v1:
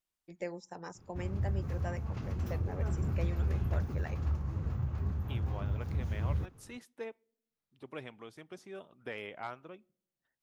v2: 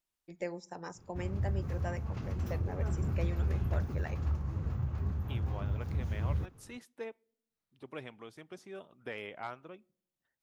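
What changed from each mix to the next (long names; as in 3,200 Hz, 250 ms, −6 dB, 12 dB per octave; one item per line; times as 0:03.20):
first voice: send +11.5 dB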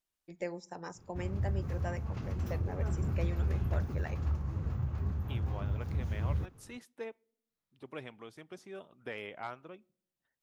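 nothing changed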